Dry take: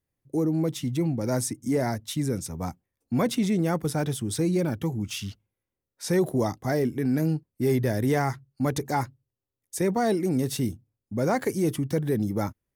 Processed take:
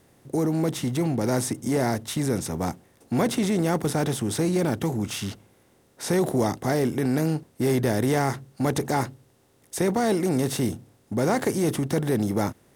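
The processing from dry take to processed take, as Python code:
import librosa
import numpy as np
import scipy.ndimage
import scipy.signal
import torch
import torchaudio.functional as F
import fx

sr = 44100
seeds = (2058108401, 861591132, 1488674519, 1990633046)

y = fx.bin_compress(x, sr, power=0.6)
y = y * librosa.db_to_amplitude(-1.5)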